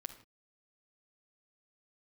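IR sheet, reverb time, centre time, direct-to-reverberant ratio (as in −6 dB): non-exponential decay, 9 ms, 3.0 dB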